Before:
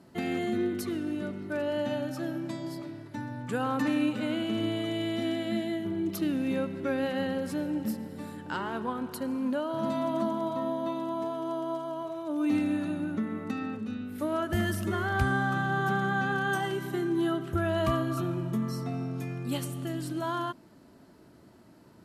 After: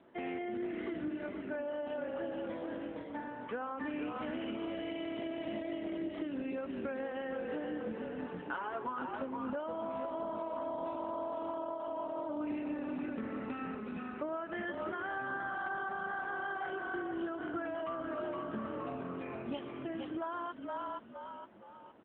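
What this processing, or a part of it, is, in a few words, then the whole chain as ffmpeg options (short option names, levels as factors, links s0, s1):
voicemail: -filter_complex "[0:a]asettb=1/sr,asplit=3[s0][s1][s2];[s0]atrim=end=8.384[s3];[s1]atrim=start=8.38:end=9.28,asetpts=PTS-STARTPTS,afade=t=in:d=0.004:c=qsin,afade=t=out:st=0.896:d=0.004:c=qsin,aecho=1:1:7.2:0.87,atrim=end_sample=39690[s4];[s2]atrim=start=9.276[s5];[s3][s4]acrossfade=d=0.004:c1=hsin:c2=qsin[s6];[s6][s5]acrossfade=d=0.004:c1=qsin:c2=hsin,asplit=6[s7][s8][s9][s10][s11][s12];[s8]adelay=467,afreqshift=-42,volume=0.562[s13];[s9]adelay=934,afreqshift=-84,volume=0.224[s14];[s10]adelay=1401,afreqshift=-126,volume=0.0902[s15];[s11]adelay=1868,afreqshift=-168,volume=0.0359[s16];[s12]adelay=2335,afreqshift=-210,volume=0.0145[s17];[s7][s13][s14][s15][s16][s17]amix=inputs=6:normalize=0,highpass=370,lowpass=2800,acompressor=threshold=0.02:ratio=12" -ar 8000 -c:a libopencore_amrnb -b:a 7950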